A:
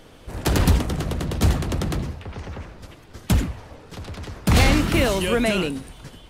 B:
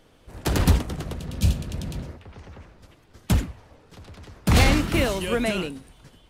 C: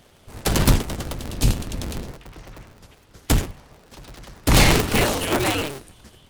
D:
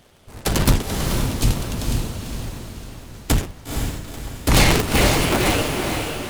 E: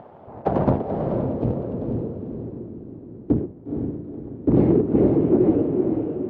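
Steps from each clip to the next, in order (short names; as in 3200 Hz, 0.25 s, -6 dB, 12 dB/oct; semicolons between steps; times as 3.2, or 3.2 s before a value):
spectral repair 1.21–2.14, 220–2300 Hz before; upward expander 1.5:1, over -31 dBFS
cycle switcher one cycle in 2, inverted; high shelf 4100 Hz +6.5 dB; gain +2 dB
diffused feedback echo 0.483 s, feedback 46%, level -4 dB
BPF 130–5400 Hz; upward compressor, threshold -38 dBFS; low-pass sweep 840 Hz -> 360 Hz, 0.05–2.85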